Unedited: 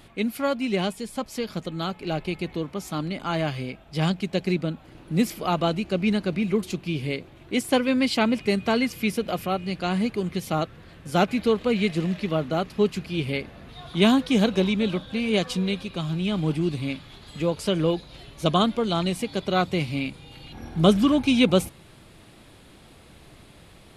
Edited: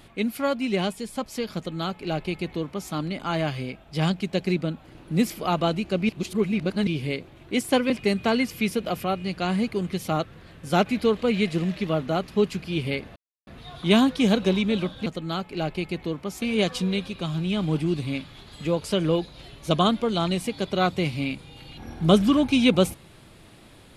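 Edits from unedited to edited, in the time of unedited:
1.56–2.92 copy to 15.17
6.09–6.87 reverse
7.9–8.32 cut
13.58 insert silence 0.31 s

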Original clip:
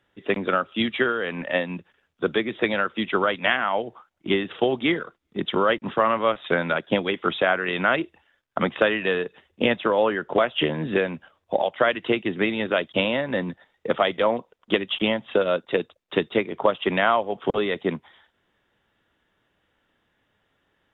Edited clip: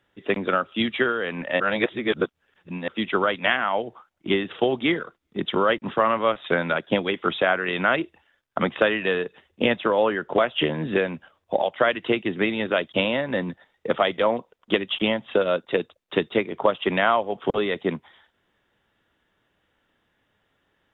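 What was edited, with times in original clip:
1.6–2.88 reverse

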